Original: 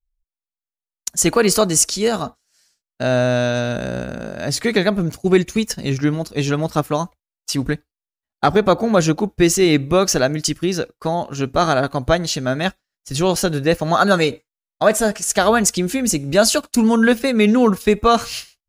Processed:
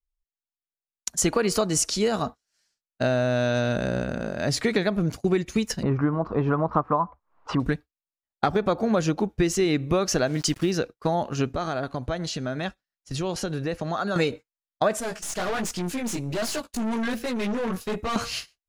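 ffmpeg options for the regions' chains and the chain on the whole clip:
ffmpeg -i in.wav -filter_complex "[0:a]asettb=1/sr,asplit=3[link_01][link_02][link_03];[link_01]atrim=end=5.834[link_04];[link_02]atrim=start=5.83:end=7.6,asetpts=PTS-STARTPTS,afade=type=in:duration=0.004:curve=qsin,afade=type=out:start_time=1.766:duration=0.004:curve=qsin,lowpass=frequency=1100:width_type=q:width=4.2,acompressor=mode=upward:threshold=-17dB:ratio=2.5:attack=3.2:release=140:knee=2.83:detection=peak[link_05];[link_03]atrim=start=7.596[link_06];[link_04][link_05]acrossfade=duration=0.004:curve1=hsin:curve2=qsin[link_07];[link_07][link_06]acrossfade=duration=0.004:curve1=qsin:curve2=hsin,asettb=1/sr,asplit=3[link_08][link_09][link_10];[link_08]atrim=end=10.274[link_11];[link_09]atrim=start=10.27:end=10.71,asetpts=PTS-STARTPTS,afade=type=in:duration=0.004:curve=qsin,afade=type=out:start_time=0.436:duration=0.004:curve=qsin,acompressor=mode=upward:threshold=-20dB:ratio=2.5:attack=3.2:release=140:knee=2.83:detection=peak,acrusher=bits=5:mix=0:aa=0.5[link_12];[link_10]atrim=start=10.706[link_13];[link_11][link_12]acrossfade=duration=0.004:curve1=hsin:curve2=qsin[link_14];[link_14][link_13]acrossfade=duration=0.004:curve1=qsin:curve2=hsin,asettb=1/sr,asplit=3[link_15][link_16][link_17];[link_15]atrim=end=11.534[link_18];[link_16]atrim=start=11.53:end=14.16,asetpts=PTS-STARTPTS,afade=type=in:duration=0.004:curve=qsin,afade=type=out:start_time=2.626:duration=0.004:curve=qsin,lowpass=11000,acompressor=threshold=-26dB:ratio=3:attack=3.2:release=140:knee=1:detection=peak[link_19];[link_17]atrim=start=14.156[link_20];[link_18][link_19]acrossfade=duration=0.004:curve1=hsin:curve2=qsin[link_21];[link_21][link_20]acrossfade=duration=0.004:curve1=qsin:curve2=hsin,asettb=1/sr,asplit=3[link_22][link_23][link_24];[link_22]atrim=end=15.004[link_25];[link_23]atrim=start=15:end=18.16,asetpts=PTS-STARTPTS,afade=type=in:duration=0.004:curve=qsin,afade=type=out:start_time=3.156:duration=0.004:curve=qsin,highshelf=frequency=7800:gain=8,flanger=delay=16:depth=6.4:speed=1.3,aeval=exprs='(tanh(15.8*val(0)+0.4)-tanh(0.4))/15.8':channel_layout=same[link_26];[link_24]atrim=start=18.156[link_27];[link_25][link_26]acrossfade=duration=0.004:curve1=hsin:curve2=qsin[link_28];[link_28][link_27]acrossfade=duration=0.004:curve1=qsin:curve2=hsin,agate=range=-8dB:threshold=-33dB:ratio=16:detection=peak,highshelf=frequency=7700:gain=-10,acompressor=threshold=-18dB:ratio=6,volume=-1dB" out.wav

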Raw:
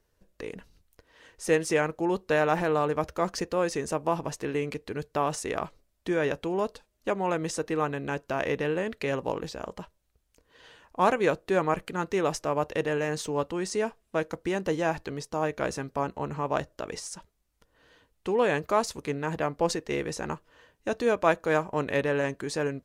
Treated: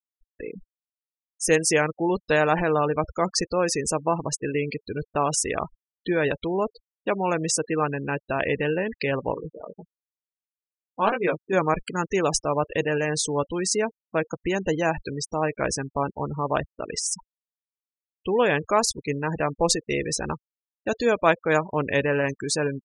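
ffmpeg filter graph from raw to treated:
ffmpeg -i in.wav -filter_complex "[0:a]asettb=1/sr,asplit=3[link_01][link_02][link_03];[link_01]atrim=end=9.344[link_04];[link_02]atrim=start=9.34:end=11.53,asetpts=PTS-STARTPTS,afade=type=in:duration=0.004:curve=qsin,afade=type=out:start_time=2.186:duration=0.004:curve=qsin,adynamicsmooth=sensitivity=3:basefreq=1800,flanger=delay=16.5:depth=5.6:speed=1.6[link_05];[link_03]atrim=start=11.526[link_06];[link_04][link_05]acrossfade=duration=0.004:curve1=hsin:curve2=qsin[link_07];[link_07][link_06]acrossfade=duration=0.004:curve1=qsin:curve2=hsin,highshelf=frequency=3300:gain=12,afftfilt=real='re*gte(hypot(re,im),0.0316)':imag='im*gte(hypot(re,im),0.0316)':win_size=1024:overlap=0.75,lowshelf=frequency=82:gain=10,volume=2.5dB" out.wav

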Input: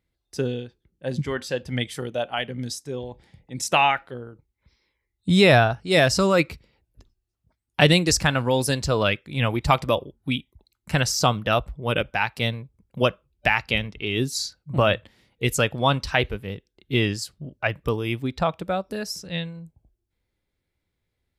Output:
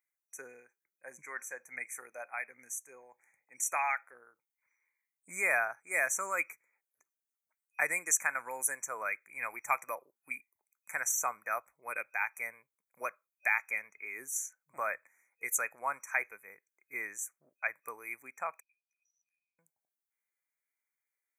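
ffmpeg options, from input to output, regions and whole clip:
ffmpeg -i in.wav -filter_complex "[0:a]asettb=1/sr,asplit=3[link_01][link_02][link_03];[link_01]atrim=end=18.604[link_04];[link_02]atrim=start=18.6:end=19.59,asetpts=PTS-STARTPTS,afade=type=in:duration=0.004:curve=qsin,afade=type=out:start_time=0.986:duration=0.004:curve=qsin,asuperpass=centerf=3800:order=20:qfactor=1.3,acompressor=threshold=-50dB:ratio=6:attack=3.2:release=140:knee=1:detection=peak[link_05];[link_03]atrim=start=19.586[link_06];[link_04][link_05]acrossfade=duration=0.004:curve1=hsin:curve2=qsin[link_07];[link_07][link_06]acrossfade=duration=0.004:curve1=qsin:curve2=hsin,afftfilt=real='re*(1-between(b*sr/4096,2500,5800))':imag='im*(1-between(b*sr/4096,2500,5800))':win_size=4096:overlap=0.75,highpass=1300,highshelf=frequency=11000:gain=11,volume=-5.5dB" out.wav

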